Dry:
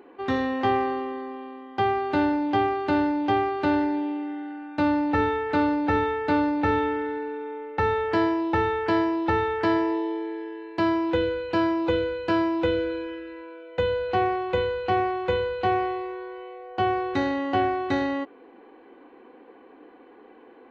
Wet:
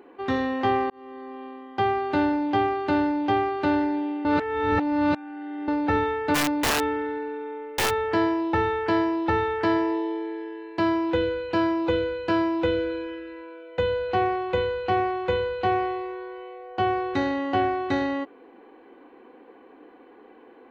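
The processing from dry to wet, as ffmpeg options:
-filter_complex "[0:a]asplit=3[a][b][c];[a]afade=t=out:st=6.34:d=0.02[d];[b]aeval=exprs='(mod(7.08*val(0)+1,2)-1)/7.08':c=same,afade=t=in:st=6.34:d=0.02,afade=t=out:st=7.89:d=0.02[e];[c]afade=t=in:st=7.89:d=0.02[f];[d][e][f]amix=inputs=3:normalize=0,asplit=4[g][h][i][j];[g]atrim=end=0.9,asetpts=PTS-STARTPTS,afade=t=out:st=0.896:d=0.004:c=hsin[k];[h]atrim=start=0.9:end=4.252,asetpts=PTS-STARTPTS,afade=t=in:d=0.56[l];[i]atrim=start=4.248:end=5.682,asetpts=PTS-STARTPTS,areverse[m];[j]atrim=start=5.678[n];[k][l]concat=n=2:v=0:a=1[o];[o][m]acrossfade=d=0.004:c1=hsin:c2=hsin[p];[p][n]acrossfade=d=0.004:c1=hsin:c2=hsin"

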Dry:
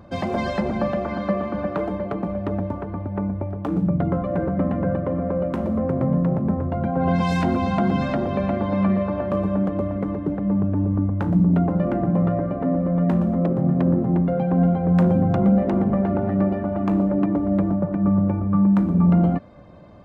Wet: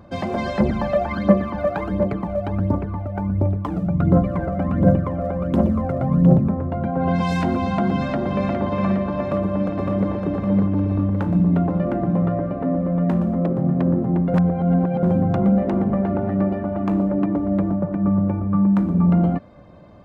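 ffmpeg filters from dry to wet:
-filter_complex "[0:a]asettb=1/sr,asplit=3[a][b][c];[a]atrim=end=0.604[d];[b]atrim=start=0.6:end=6.49,asetpts=PTS-STARTPTS,afade=t=in:d=0.004:c=qsin,afade=t=out:st=5.886:d=0.004:c=qsin,aphaser=in_gain=1:out_gain=1:delay=1.7:decay=0.68:speed=1.4:type=triangular[e];[c]atrim=start=6.486[f];[d][e]acrossfade=d=0.004:c1=hsin:c2=qsin[g];[g][f]acrossfade=d=0.004:c1=qsin:c2=hsin,asplit=2[h][i];[i]afade=t=in:st=7.84:d=0.01,afade=t=out:st=8.51:d=0.01,aecho=0:1:410|820|1230|1640|2050|2460|2870|3280|3690|4100|4510|4920:0.530884|0.371619|0.260133|0.182093|0.127465|0.0892257|0.062458|0.0437206|0.0306044|0.0214231|0.0149962|0.0104973[j];[h][j]amix=inputs=2:normalize=0,asplit=2[k][l];[l]afade=t=in:st=9.21:d=0.01,afade=t=out:st=10.1:d=0.01,aecho=0:1:560|1120|1680|2240|2800|3360|3920|4480:0.707946|0.38937|0.214154|0.117784|0.0647815|0.0356298|0.0195964|0.010778[m];[k][m]amix=inputs=2:normalize=0,asplit=3[n][o][p];[n]atrim=end=14.342[q];[o]atrim=start=14.338:end=15.032,asetpts=PTS-STARTPTS,areverse[r];[p]atrim=start=15.028[s];[q][r]acrossfade=d=0.004:c1=hsin:c2=hsin[t];[t][s]acrossfade=d=0.004:c1=hsin:c2=hsin"

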